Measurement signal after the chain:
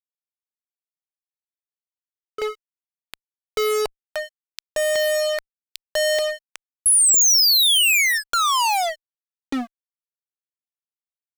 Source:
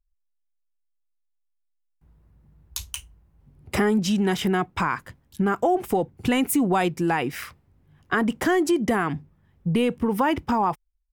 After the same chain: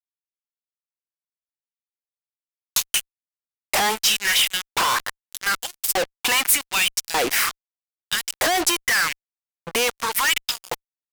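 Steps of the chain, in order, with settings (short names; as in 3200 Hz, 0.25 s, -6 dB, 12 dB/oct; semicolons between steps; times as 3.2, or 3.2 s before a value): LFO high-pass saw up 0.84 Hz 470–5500 Hz; fuzz box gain 43 dB, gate -40 dBFS; high shelf 2500 Hz +7 dB; gain -7 dB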